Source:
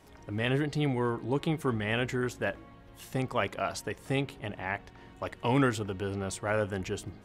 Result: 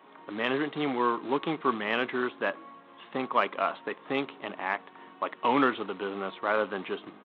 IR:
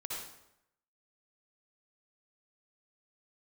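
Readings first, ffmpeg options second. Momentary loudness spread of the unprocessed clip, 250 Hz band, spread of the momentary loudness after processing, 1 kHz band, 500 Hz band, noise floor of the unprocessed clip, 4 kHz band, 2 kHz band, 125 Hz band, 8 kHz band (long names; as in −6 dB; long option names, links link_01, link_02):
9 LU, 0.0 dB, 11 LU, +7.0 dB, +1.5 dB, −53 dBFS, +1.5 dB, +3.0 dB, −14.5 dB, below −30 dB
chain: -af "aresample=8000,acrusher=bits=4:mode=log:mix=0:aa=0.000001,aresample=44100,equalizer=frequency=1100:width=2.6:gain=10,acontrast=68,highpass=frequency=220:width=0.5412,highpass=frequency=220:width=1.3066,volume=-5.5dB"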